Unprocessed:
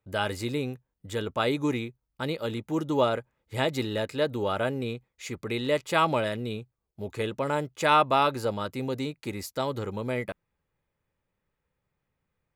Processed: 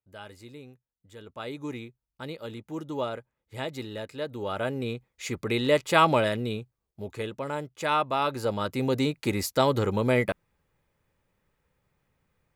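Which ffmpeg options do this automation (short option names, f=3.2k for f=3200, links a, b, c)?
-af "volume=15dB,afade=t=in:st=1.17:d=0.66:silence=0.375837,afade=t=in:st=4.29:d=1.01:silence=0.298538,afade=t=out:st=6.22:d=1.14:silence=0.398107,afade=t=in:st=8.18:d=1.01:silence=0.266073"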